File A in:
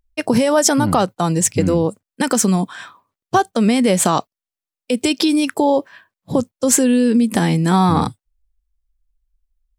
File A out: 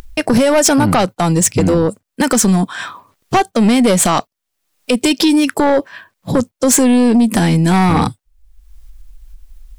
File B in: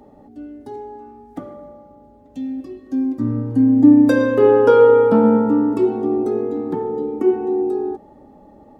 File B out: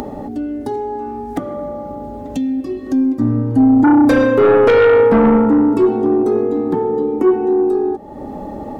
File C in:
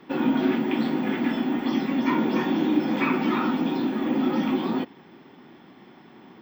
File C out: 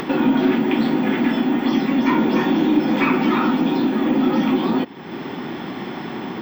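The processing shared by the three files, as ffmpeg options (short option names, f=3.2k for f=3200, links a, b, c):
-af "aeval=exprs='0.891*(cos(1*acos(clip(val(0)/0.891,-1,1)))-cos(1*PI/2))+0.316*(cos(5*acos(clip(val(0)/0.891,-1,1)))-cos(5*PI/2))+0.0126*(cos(8*acos(clip(val(0)/0.891,-1,1)))-cos(8*PI/2))':c=same,acompressor=mode=upward:threshold=-12dB:ratio=2.5,volume=-3dB"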